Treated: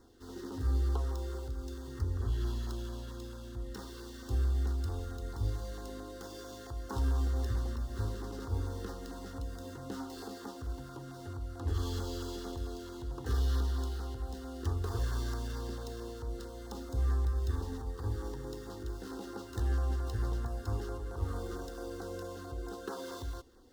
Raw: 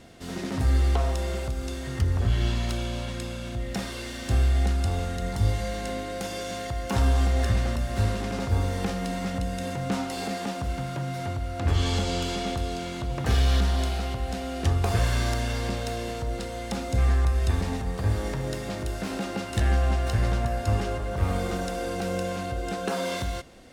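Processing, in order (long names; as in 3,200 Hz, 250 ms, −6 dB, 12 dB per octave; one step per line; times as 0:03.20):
running median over 5 samples
auto-filter notch saw down 4.5 Hz 630–3,200 Hz
phaser with its sweep stopped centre 630 Hz, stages 6
level −6.5 dB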